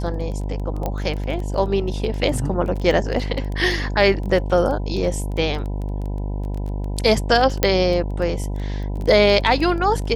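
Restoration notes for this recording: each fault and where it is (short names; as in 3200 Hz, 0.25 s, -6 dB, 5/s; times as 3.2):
buzz 50 Hz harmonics 20 -25 dBFS
crackle 11/s -26 dBFS
0.86 pop -11 dBFS
7.63 pop -1 dBFS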